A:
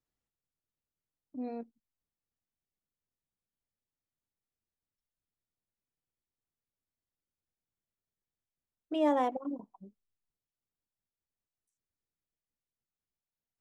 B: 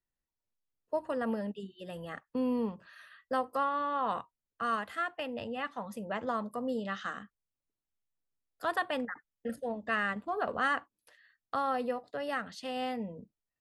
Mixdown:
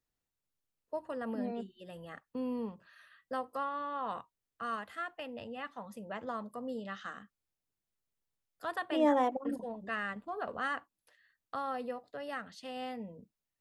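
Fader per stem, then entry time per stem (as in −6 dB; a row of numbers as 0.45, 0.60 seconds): +0.5, −5.5 decibels; 0.00, 0.00 seconds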